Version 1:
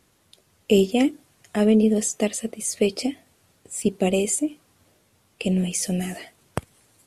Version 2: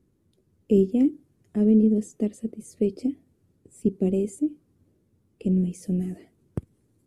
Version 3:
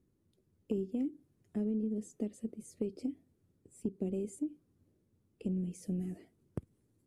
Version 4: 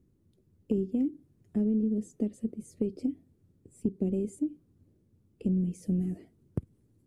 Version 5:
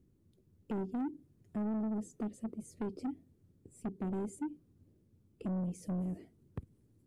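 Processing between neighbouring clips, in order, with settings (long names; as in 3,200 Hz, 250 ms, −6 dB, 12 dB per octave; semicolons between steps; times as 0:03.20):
drawn EQ curve 360 Hz 0 dB, 680 Hz −17 dB, 1,600 Hz −19 dB, 3,000 Hz −23 dB, 12,000 Hz −19 dB
downward compressor 6 to 1, threshold −24 dBFS, peak gain reduction 10 dB; level −7.5 dB
low-shelf EQ 400 Hz +9 dB
soft clipping −31 dBFS, distortion −10 dB; level −1.5 dB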